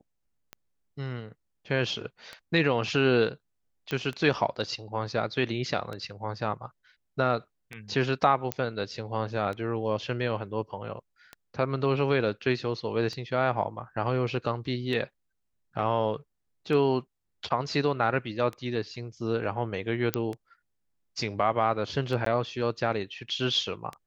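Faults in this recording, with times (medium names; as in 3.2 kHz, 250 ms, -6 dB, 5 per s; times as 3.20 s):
tick 33 1/3 rpm -23 dBFS
3.91 s: pop -18 dBFS
8.52 s: pop -12 dBFS
20.14 s: pop -9 dBFS
22.25–22.26 s: dropout 13 ms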